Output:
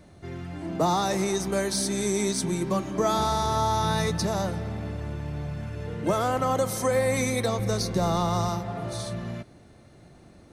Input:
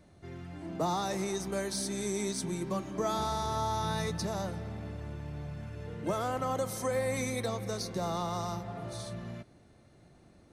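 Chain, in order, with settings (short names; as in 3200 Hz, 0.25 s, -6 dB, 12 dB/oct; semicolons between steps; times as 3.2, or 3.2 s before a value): 7.59–8.49 low shelf 120 Hz +9 dB; gain +7.5 dB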